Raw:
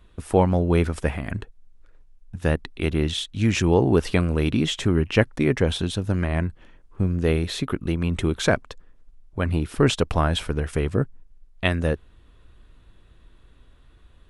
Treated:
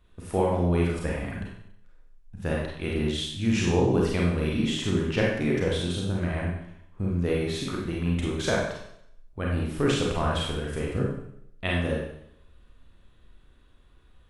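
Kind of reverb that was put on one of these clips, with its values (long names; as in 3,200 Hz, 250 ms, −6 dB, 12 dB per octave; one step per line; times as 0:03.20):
four-comb reverb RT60 0.72 s, combs from 31 ms, DRR −3.5 dB
level −8.5 dB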